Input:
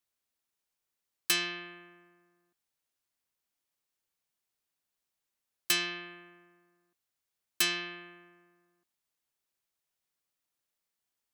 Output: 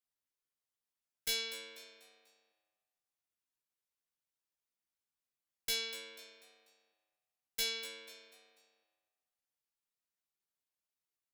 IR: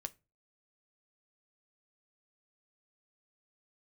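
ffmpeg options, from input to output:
-filter_complex "[0:a]asetrate=57191,aresample=44100,atempo=0.771105,asplit=5[a][b][c][d][e];[b]adelay=245,afreqshift=97,volume=-13.5dB[f];[c]adelay=490,afreqshift=194,volume=-21.7dB[g];[d]adelay=735,afreqshift=291,volume=-29.9dB[h];[e]adelay=980,afreqshift=388,volume=-38dB[i];[a][f][g][h][i]amix=inputs=5:normalize=0,aeval=exprs='clip(val(0),-1,0.0668)':c=same,asplit=2[j][k];[k]adelay=15,volume=-5dB[l];[j][l]amix=inputs=2:normalize=0,volume=-8.5dB"

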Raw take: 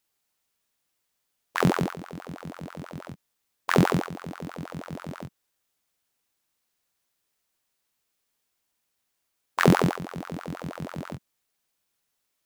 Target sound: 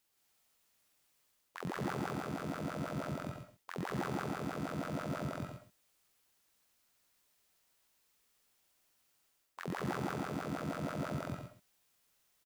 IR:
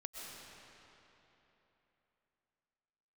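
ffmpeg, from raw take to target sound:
-filter_complex "[0:a]areverse,acompressor=threshold=-36dB:ratio=12,areverse,aecho=1:1:174.9|239.1|288.6:1|0.316|0.355[a];[1:a]atrim=start_sample=2205,atrim=end_sample=6174[b];[a][b]afir=irnorm=-1:irlink=0,volume=5dB"

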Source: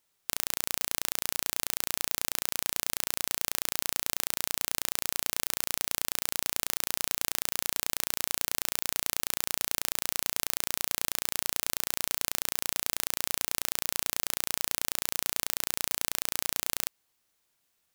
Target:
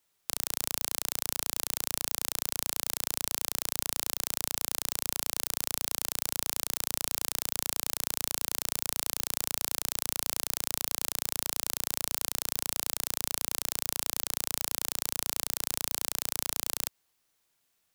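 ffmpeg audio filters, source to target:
-filter_complex "[0:a]acrossover=split=110|1500|2900[a][b][c][d];[c]alimiter=level_in=13.5dB:limit=-24dB:level=0:latency=1,volume=-13.5dB[e];[a][b][e][d]amix=inputs=4:normalize=0"

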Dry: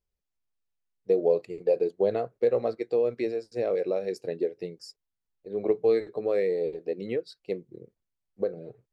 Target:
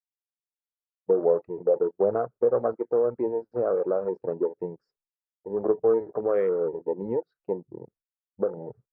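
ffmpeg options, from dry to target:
-filter_complex "[0:a]agate=range=-33dB:threshold=-57dB:ratio=3:detection=peak,asplit=2[a][b];[b]acompressor=threshold=-33dB:ratio=6,volume=-1dB[c];[a][c]amix=inputs=2:normalize=0,afwtdn=0.0158,lowpass=f=1.3k:t=q:w=3,volume=-1.5dB"

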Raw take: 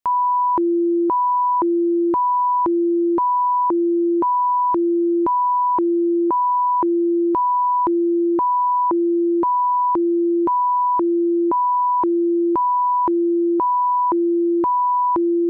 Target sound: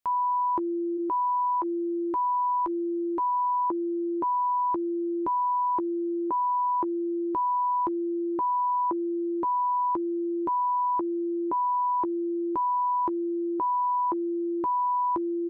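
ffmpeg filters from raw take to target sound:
-filter_complex "[0:a]asplit=3[a][b][c];[a]afade=t=out:st=0.96:d=0.02[d];[b]equalizer=f=190:t=o:w=2.1:g=-13.5,afade=t=in:st=0.96:d=0.02,afade=t=out:st=3.3:d=0.02[e];[c]afade=t=in:st=3.3:d=0.02[f];[d][e][f]amix=inputs=3:normalize=0,alimiter=limit=-23.5dB:level=0:latency=1:release=46,asplit=2[g][h];[h]adelay=13,volume=-12.5dB[i];[g][i]amix=inputs=2:normalize=0"

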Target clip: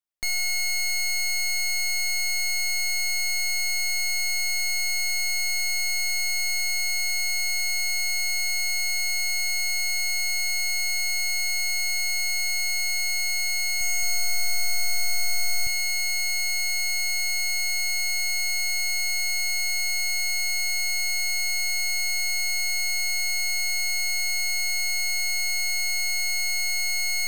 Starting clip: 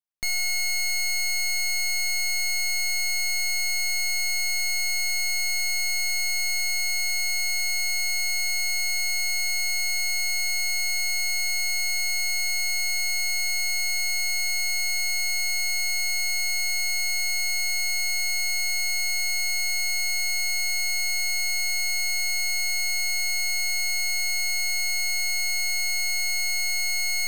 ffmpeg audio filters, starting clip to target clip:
-filter_complex "[0:a]equalizer=f=130:t=o:w=1.1:g=-7.5,asettb=1/sr,asplit=3[a][b][c];[a]atrim=end=13.504[d];[b]atrim=start=13.5:end=15.67,asetpts=PTS-STARTPTS,afade=t=in:d=0.004:c=qsin,afade=t=out:st=2.166:d=0.004:c=qsin,aecho=1:1:310|527|678.9|785.2|859.7:0.631|0.398|0.251|0.158|0.1,atrim=end_sample=95697[e];[c]atrim=start=15.666[f];[d][e]acrossfade=d=0.004:c1=hsin:c2=qsin[g];[g][f]acrossfade=d=0.004:c1=qsin:c2=hsin"

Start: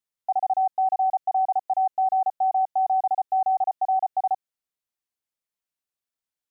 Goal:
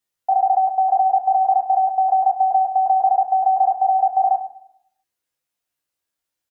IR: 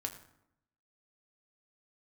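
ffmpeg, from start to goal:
-filter_complex "[0:a]asplit=2[a][b];[b]adelay=14,volume=-4dB[c];[a][c]amix=inputs=2:normalize=0[d];[1:a]atrim=start_sample=2205,asetrate=48510,aresample=44100[e];[d][e]afir=irnorm=-1:irlink=0,volume=8dB"

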